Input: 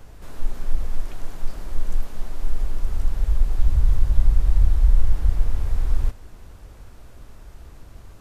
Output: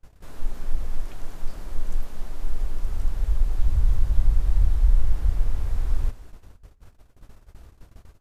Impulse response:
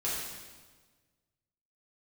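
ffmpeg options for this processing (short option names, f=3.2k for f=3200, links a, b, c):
-filter_complex "[0:a]agate=range=-28dB:threshold=-39dB:ratio=16:detection=peak,asplit=2[a][b];[1:a]atrim=start_sample=2205[c];[b][c]afir=irnorm=-1:irlink=0,volume=-25dB[d];[a][d]amix=inputs=2:normalize=0,volume=-3dB"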